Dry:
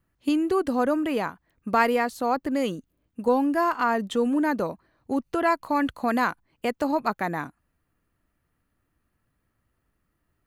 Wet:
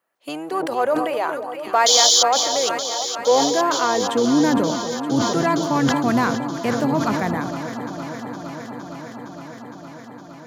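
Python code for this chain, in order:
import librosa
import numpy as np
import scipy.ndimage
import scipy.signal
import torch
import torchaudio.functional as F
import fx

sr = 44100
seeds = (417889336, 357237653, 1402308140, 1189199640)

p1 = fx.octave_divider(x, sr, octaves=1, level_db=-2.0)
p2 = fx.spec_paint(p1, sr, seeds[0], shape='noise', start_s=1.86, length_s=0.37, low_hz=3000.0, high_hz=7200.0, level_db=-15.0)
p3 = np.clip(p2, -10.0 ** (-22.0 / 20.0), 10.0 ** (-22.0 / 20.0))
p4 = p2 + (p3 * librosa.db_to_amplitude(-8.5))
p5 = fx.filter_sweep_highpass(p4, sr, from_hz=620.0, to_hz=180.0, start_s=3.02, end_s=4.91, q=1.9)
p6 = p5 + fx.echo_alternate(p5, sr, ms=231, hz=1100.0, feedback_pct=89, wet_db=-9.5, dry=0)
p7 = fx.sustainer(p6, sr, db_per_s=38.0)
y = p7 * librosa.db_to_amplitude(-1.0)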